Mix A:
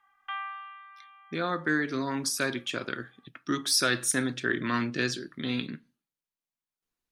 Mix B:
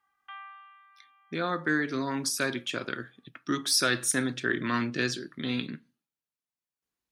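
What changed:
background -8.5 dB; master: add HPF 51 Hz

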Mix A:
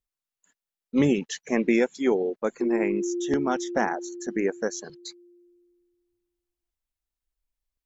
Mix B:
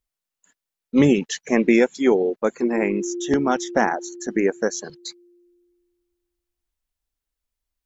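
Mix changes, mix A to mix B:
speech +5.5 dB; background: add steep high-pass 240 Hz

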